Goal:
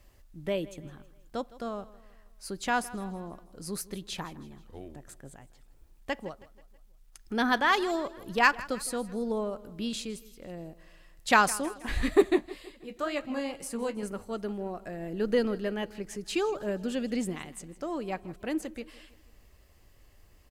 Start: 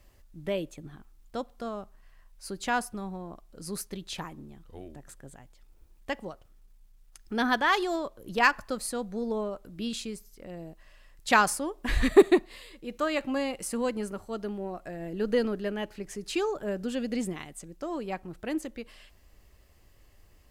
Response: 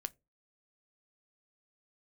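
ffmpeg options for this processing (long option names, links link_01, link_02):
-filter_complex "[0:a]asettb=1/sr,asplit=3[link_01][link_02][link_03];[link_01]atrim=end=11.684[link_04];[link_02]atrim=start=11.68:end=14.03,asetpts=PTS-STARTPTS,afade=type=in:duration=0.004:curve=qsin,afade=type=out:start_time=2.346:duration=0.004:curve=qsin,flanger=delay=6.6:depth=8.4:regen=-39:speed=2:shape=sinusoidal[link_05];[link_03]atrim=start=14.026[link_06];[link_04][link_05]acrossfade=duration=0.004:curve1=hsin:curve2=qsin[link_07];[link_07][link_06]acrossfade=duration=0.004:curve1=qsin:curve2=hsin,aecho=1:1:161|322|483|644:0.112|0.055|0.0269|0.0132"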